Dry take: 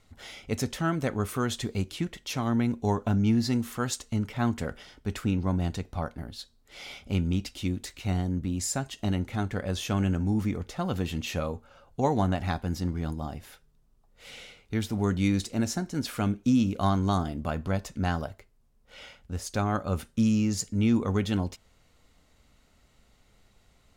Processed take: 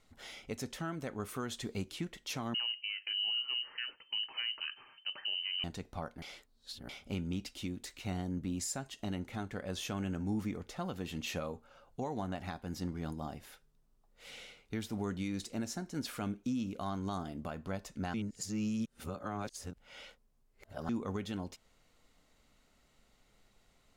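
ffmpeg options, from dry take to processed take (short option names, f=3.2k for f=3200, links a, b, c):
-filter_complex "[0:a]asettb=1/sr,asplit=3[a][b][c];[a]atrim=end=2.544[d];[b]atrim=start=2.54:end=5.64,asetpts=PTS-STARTPTS,afade=t=in:d=0.004:c=qsin,afade=t=out:st=3.096:d=0.004:c=qsin,lowpass=f=2.6k:t=q:w=0.5098,lowpass=f=2.6k:t=q:w=0.6013,lowpass=f=2.6k:t=q:w=0.9,lowpass=f=2.6k:t=q:w=2.563,afreqshift=-3100[e];[c]atrim=start=5.636[f];[d][e]acrossfade=d=0.004:c1=hsin:c2=qsin[g];[g][f]acrossfade=d=0.004:c1=qsin:c2=hsin,asplit=5[h][i][j][k][l];[h]atrim=end=6.222[m];[i]atrim=start=6.218:end=6.892,asetpts=PTS-STARTPTS,areverse[n];[j]atrim=start=6.888:end=18.142[o];[k]atrim=start=18.138:end=20.892,asetpts=PTS-STARTPTS,areverse[p];[l]atrim=start=20.888[q];[m][n]acrossfade=d=0.004:c1=hsin:c2=hsin[r];[r][o]acrossfade=d=0.004:c1=hsin:c2=hsin[s];[s][p]acrossfade=d=0.004:c1=hsin:c2=hsin[t];[t][q]acrossfade=d=0.004:c1=hsin:c2=hsin,equalizer=f=73:w=0.87:g=-8,alimiter=limit=-23dB:level=0:latency=1:release=350,volume=-4.5dB"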